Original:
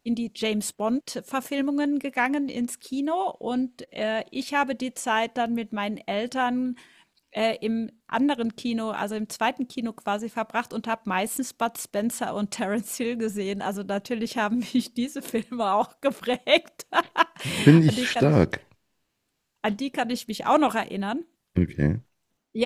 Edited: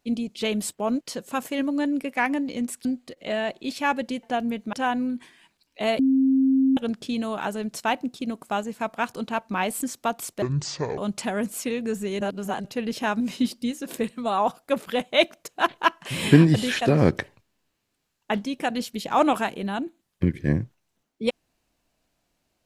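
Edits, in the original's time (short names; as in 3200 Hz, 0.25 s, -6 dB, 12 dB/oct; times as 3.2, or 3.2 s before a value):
2.85–3.56 cut
4.94–5.29 cut
5.79–6.29 cut
7.55–8.33 bleep 266 Hz -16 dBFS
11.98–12.32 speed 61%
13.55–13.99 reverse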